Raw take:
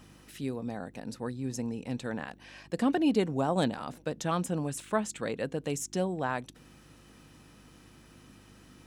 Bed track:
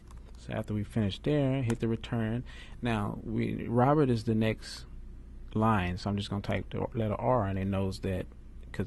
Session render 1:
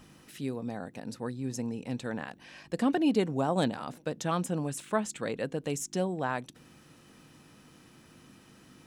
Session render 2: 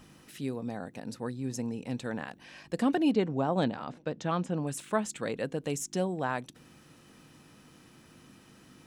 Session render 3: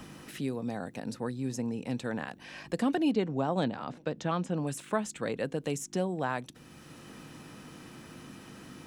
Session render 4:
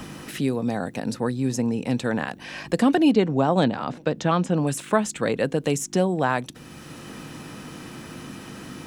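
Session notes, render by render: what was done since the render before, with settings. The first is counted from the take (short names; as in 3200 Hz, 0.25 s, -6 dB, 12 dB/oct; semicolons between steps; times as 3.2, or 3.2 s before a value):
de-hum 50 Hz, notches 2
3.14–4.67 air absorption 120 m
three-band squash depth 40%
gain +9.5 dB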